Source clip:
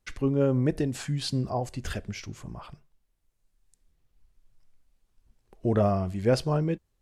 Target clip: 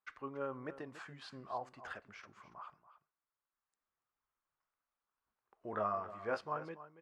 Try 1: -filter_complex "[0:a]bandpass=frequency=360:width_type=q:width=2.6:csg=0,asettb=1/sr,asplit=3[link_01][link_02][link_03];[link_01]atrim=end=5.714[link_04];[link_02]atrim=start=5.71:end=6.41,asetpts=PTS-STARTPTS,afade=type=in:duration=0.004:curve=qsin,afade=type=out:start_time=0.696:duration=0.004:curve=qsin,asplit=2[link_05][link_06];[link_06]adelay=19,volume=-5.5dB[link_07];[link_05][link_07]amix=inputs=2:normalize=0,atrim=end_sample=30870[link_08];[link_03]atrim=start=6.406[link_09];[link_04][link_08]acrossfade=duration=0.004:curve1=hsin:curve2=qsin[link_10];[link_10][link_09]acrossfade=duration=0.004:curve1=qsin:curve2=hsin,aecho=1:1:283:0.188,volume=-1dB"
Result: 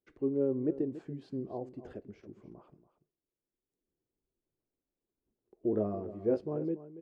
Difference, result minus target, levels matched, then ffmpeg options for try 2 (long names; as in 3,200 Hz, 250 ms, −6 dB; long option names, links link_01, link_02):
1,000 Hz band −17.5 dB
-filter_complex "[0:a]bandpass=frequency=1200:width_type=q:width=2.6:csg=0,asettb=1/sr,asplit=3[link_01][link_02][link_03];[link_01]atrim=end=5.714[link_04];[link_02]atrim=start=5.71:end=6.41,asetpts=PTS-STARTPTS,afade=type=in:duration=0.004:curve=qsin,afade=type=out:start_time=0.696:duration=0.004:curve=qsin,asplit=2[link_05][link_06];[link_06]adelay=19,volume=-5.5dB[link_07];[link_05][link_07]amix=inputs=2:normalize=0,atrim=end_sample=30870[link_08];[link_03]atrim=start=6.406[link_09];[link_04][link_08]acrossfade=duration=0.004:curve1=hsin:curve2=qsin[link_10];[link_10][link_09]acrossfade=duration=0.004:curve1=qsin:curve2=hsin,aecho=1:1:283:0.188,volume=-1dB"